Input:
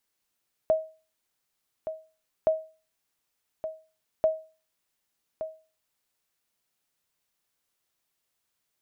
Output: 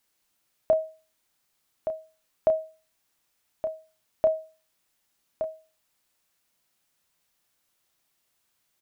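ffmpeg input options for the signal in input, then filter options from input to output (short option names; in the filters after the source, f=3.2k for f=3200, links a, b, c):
-f lavfi -i "aevalsrc='0.178*(sin(2*PI*635*mod(t,1.77))*exp(-6.91*mod(t,1.77)/0.35)+0.282*sin(2*PI*635*max(mod(t,1.77)-1.17,0))*exp(-6.91*max(mod(t,1.77)-1.17,0)/0.35))':d=5.31:s=44100"
-filter_complex "[0:a]bandreject=f=430:w=12,asplit=2[a][b];[b]alimiter=limit=-24dB:level=0:latency=1,volume=-2dB[c];[a][c]amix=inputs=2:normalize=0,asplit=2[d][e];[e]adelay=31,volume=-9dB[f];[d][f]amix=inputs=2:normalize=0"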